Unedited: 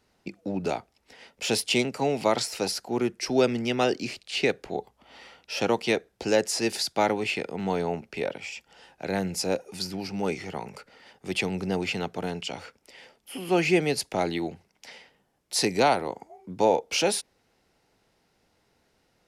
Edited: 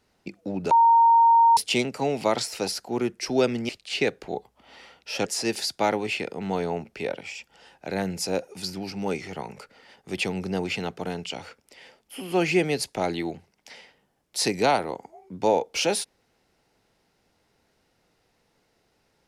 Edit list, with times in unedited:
0.71–1.57 bleep 924 Hz -13 dBFS
3.69–4.11 cut
5.68–6.43 cut

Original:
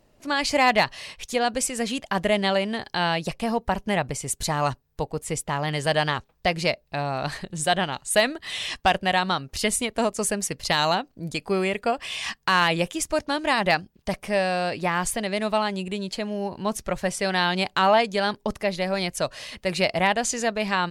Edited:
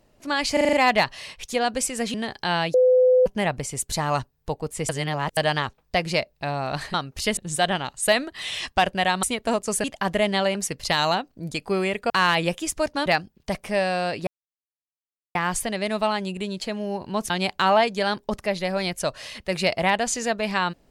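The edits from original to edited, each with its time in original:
0.53 stutter 0.04 s, 6 plays
1.94–2.65 move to 10.35
3.25–3.77 bleep 507 Hz -13 dBFS
5.4–5.88 reverse
9.31–9.74 move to 7.45
11.9–12.43 cut
13.39–13.65 cut
14.86 insert silence 1.08 s
16.81–17.47 cut

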